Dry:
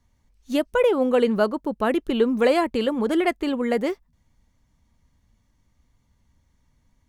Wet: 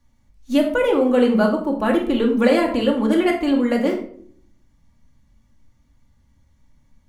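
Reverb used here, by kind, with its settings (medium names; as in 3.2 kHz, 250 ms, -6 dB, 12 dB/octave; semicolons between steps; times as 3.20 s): simulated room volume 820 m³, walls furnished, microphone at 2.4 m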